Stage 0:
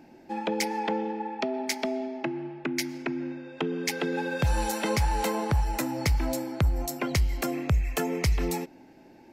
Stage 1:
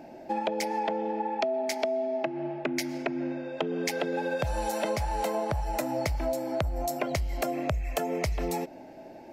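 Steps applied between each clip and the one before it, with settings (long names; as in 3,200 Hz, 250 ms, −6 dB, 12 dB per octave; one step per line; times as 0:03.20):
parametric band 630 Hz +14.5 dB 0.52 octaves
downward compressor, threshold −29 dBFS, peak gain reduction 13 dB
level +2.5 dB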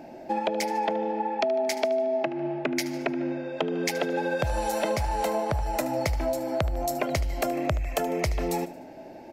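repeating echo 75 ms, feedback 45%, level −15.5 dB
level +2.5 dB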